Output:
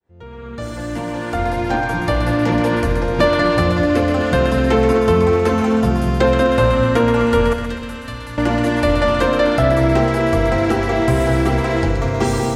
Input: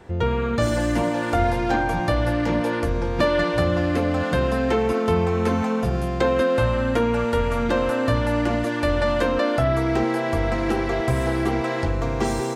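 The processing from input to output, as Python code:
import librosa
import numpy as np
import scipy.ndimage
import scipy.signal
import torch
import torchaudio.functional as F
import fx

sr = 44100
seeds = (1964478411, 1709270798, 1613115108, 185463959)

y = fx.fade_in_head(x, sr, length_s=2.53)
y = fx.tone_stack(y, sr, knobs='5-5-5', at=(7.53, 8.38))
y = fx.echo_split(y, sr, split_hz=490.0, low_ms=213, high_ms=126, feedback_pct=52, wet_db=-7.0)
y = y * librosa.db_to_amplitude(5.0)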